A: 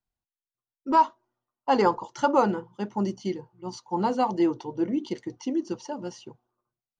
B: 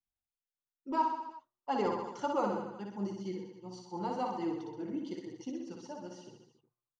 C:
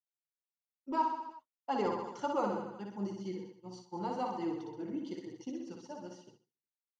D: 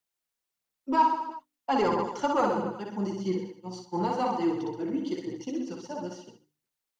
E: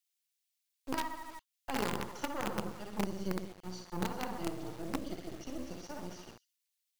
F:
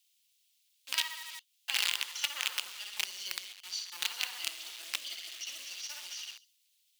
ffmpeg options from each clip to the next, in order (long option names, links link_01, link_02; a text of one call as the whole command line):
ffmpeg -i in.wav -filter_complex "[0:a]flanger=delay=0.3:depth=6.4:regen=-36:speed=1.1:shape=sinusoidal,asplit=2[link_01][link_02];[link_02]aecho=0:1:60|126|198.6|278.5|366.3:0.631|0.398|0.251|0.158|0.1[link_03];[link_01][link_03]amix=inputs=2:normalize=0,volume=-8.5dB" out.wav
ffmpeg -i in.wav -af "agate=range=-33dB:threshold=-45dB:ratio=3:detection=peak,volume=-1dB" out.wav
ffmpeg -i in.wav -filter_complex "[0:a]bandreject=frequency=50:width_type=h:width=6,bandreject=frequency=100:width_type=h:width=6,bandreject=frequency=150:width_type=h:width=6,bandreject=frequency=200:width_type=h:width=6,bandreject=frequency=250:width_type=h:width=6,bandreject=frequency=300:width_type=h:width=6,aphaser=in_gain=1:out_gain=1:delay=4.4:decay=0.3:speed=1.5:type=sinusoidal,acrossover=split=320|830[link_01][link_02][link_03];[link_02]asoftclip=type=tanh:threshold=-34.5dB[link_04];[link_01][link_04][link_03]amix=inputs=3:normalize=0,volume=9dB" out.wav
ffmpeg -i in.wav -filter_complex "[0:a]acrossover=split=180[link_01][link_02];[link_02]acompressor=threshold=-48dB:ratio=2[link_03];[link_01][link_03]amix=inputs=2:normalize=0,acrossover=split=2000[link_04][link_05];[link_04]acrusher=bits=6:dc=4:mix=0:aa=0.000001[link_06];[link_06][link_05]amix=inputs=2:normalize=0,volume=2.5dB" out.wav
ffmpeg -i in.wav -filter_complex "[0:a]highpass=frequency=3000:width_type=q:width=2,asplit=2[link_01][link_02];[link_02]aeval=exprs='0.119*sin(PI/2*1.41*val(0)/0.119)':channel_layout=same,volume=-6dB[link_03];[link_01][link_03]amix=inputs=2:normalize=0,volume=4dB" out.wav